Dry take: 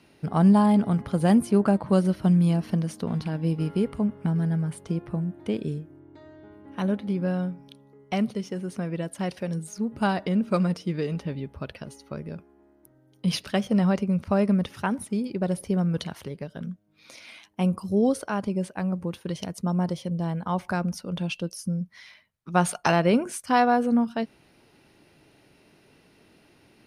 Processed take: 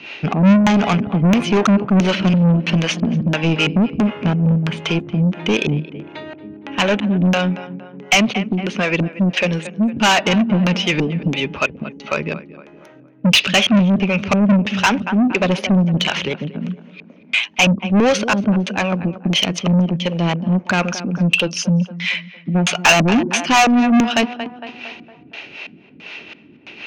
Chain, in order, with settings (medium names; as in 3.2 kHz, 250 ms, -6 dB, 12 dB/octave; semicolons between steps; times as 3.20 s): LFO low-pass square 1.5 Hz 230–3100 Hz; tape echo 230 ms, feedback 55%, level -17 dB, low-pass 2.2 kHz; harmonic tremolo 4 Hz, depth 70%, crossover 430 Hz; overdrive pedal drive 29 dB, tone 6.8 kHz, clips at -7.5 dBFS; graphic EQ with 31 bands 2.5 kHz +8 dB, 6.3 kHz +12 dB, 10 kHz -5 dB; trim +1.5 dB